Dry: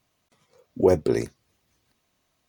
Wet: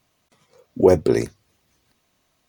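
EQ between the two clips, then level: notches 50/100 Hz; +4.5 dB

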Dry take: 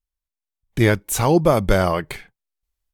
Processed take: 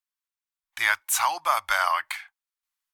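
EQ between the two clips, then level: inverse Chebyshev high-pass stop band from 490 Hz, stop band 40 dB; tilt shelf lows +3.5 dB, about 1400 Hz; +3.0 dB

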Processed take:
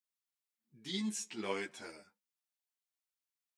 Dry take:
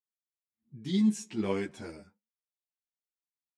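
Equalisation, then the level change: HPF 1100 Hz 6 dB/oct; +1.5 dB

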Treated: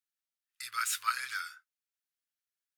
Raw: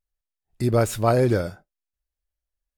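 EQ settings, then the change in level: elliptic high-pass 1300 Hz, stop band 50 dB; 0.0 dB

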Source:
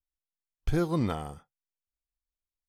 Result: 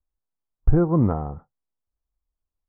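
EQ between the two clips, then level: LPF 1200 Hz 24 dB/oct; low shelf 160 Hz +6 dB; +6.5 dB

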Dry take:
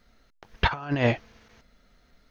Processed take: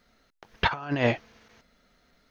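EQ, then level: low shelf 85 Hz -11 dB; 0.0 dB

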